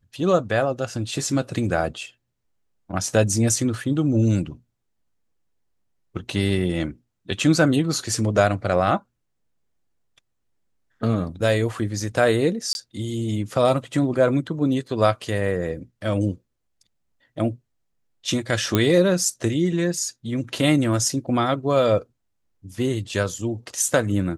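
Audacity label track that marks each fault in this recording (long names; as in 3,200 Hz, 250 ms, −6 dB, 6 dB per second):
12.730000	12.750000	drop-out 21 ms
18.750000	18.750000	click −5 dBFS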